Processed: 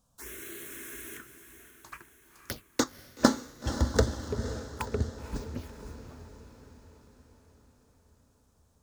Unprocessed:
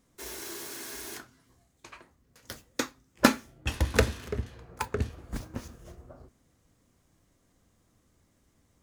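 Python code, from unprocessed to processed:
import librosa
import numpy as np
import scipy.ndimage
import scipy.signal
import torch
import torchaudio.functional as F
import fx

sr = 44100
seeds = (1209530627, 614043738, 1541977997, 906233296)

y = fx.leveller(x, sr, passes=2, at=(1.89, 2.84))
y = fx.env_phaser(y, sr, low_hz=340.0, high_hz=2500.0, full_db=-30.0)
y = fx.echo_diffused(y, sr, ms=509, feedback_pct=56, wet_db=-11.0)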